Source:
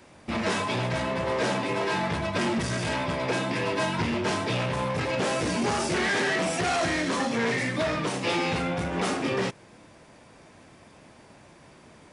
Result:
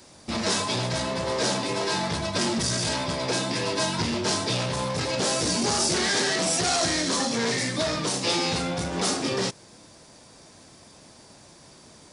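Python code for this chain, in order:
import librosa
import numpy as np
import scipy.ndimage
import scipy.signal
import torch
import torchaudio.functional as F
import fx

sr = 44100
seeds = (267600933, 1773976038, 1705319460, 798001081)

y = fx.high_shelf_res(x, sr, hz=3400.0, db=9.0, q=1.5)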